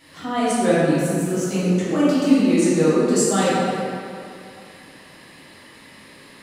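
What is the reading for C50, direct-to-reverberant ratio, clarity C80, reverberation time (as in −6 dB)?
−4.0 dB, −11.5 dB, −1.5 dB, 2.5 s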